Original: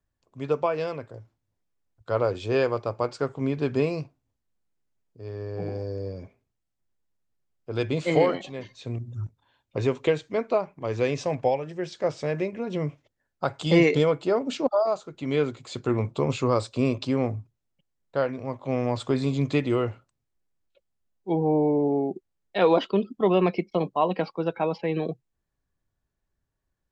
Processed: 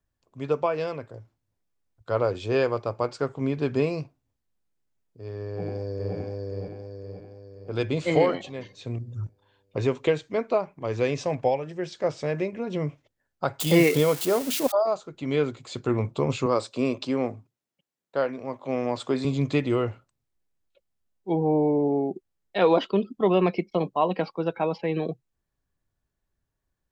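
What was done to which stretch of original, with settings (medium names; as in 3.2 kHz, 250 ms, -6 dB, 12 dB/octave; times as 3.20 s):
5.47–6.16 s: echo throw 520 ms, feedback 50%, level -1.5 dB
13.60–14.72 s: zero-crossing glitches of -21 dBFS
16.46–19.25 s: high-pass 200 Hz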